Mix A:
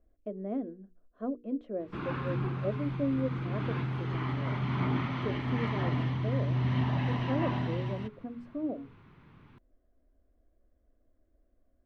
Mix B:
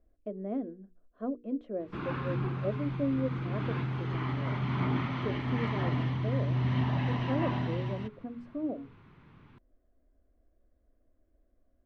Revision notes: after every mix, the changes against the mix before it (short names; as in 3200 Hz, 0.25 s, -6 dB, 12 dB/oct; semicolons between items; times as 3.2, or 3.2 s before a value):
master: add LPF 9500 Hz 12 dB/oct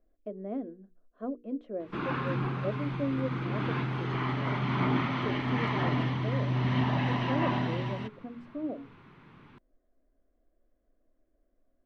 background +5.0 dB; master: add bell 66 Hz -11 dB 1.8 oct